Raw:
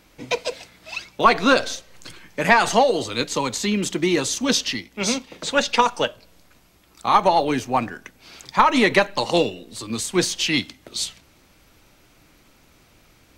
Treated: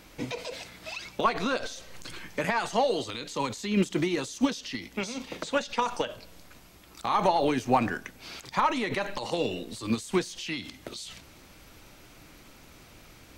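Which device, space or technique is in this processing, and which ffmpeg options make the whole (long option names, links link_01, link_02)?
de-esser from a sidechain: -filter_complex "[0:a]asettb=1/sr,asplit=3[link_01][link_02][link_03];[link_01]atrim=end=2.844[link_04];[link_02]atrim=start=2.84:end=3.35,asetpts=PTS-STARTPTS,afade=type=in:duration=0.004:curve=qsin,afade=type=out:start_time=0.506:duration=0.004:curve=qsin,equalizer=frequency=3500:width=1.5:gain=3.5[link_05];[link_03]atrim=start=3.346[link_06];[link_04][link_05]acrossfade=duration=0.004:curve1=hsin:curve2=qsin[link_07];[link_07][link_06]acrossfade=duration=0.004:curve1=qsin:curve2=hsin,asplit=2[link_08][link_09];[link_09]highpass=4300,apad=whole_len=590047[link_10];[link_08][link_10]sidechaincompress=threshold=-44dB:ratio=5:attack=1.2:release=47,volume=3dB"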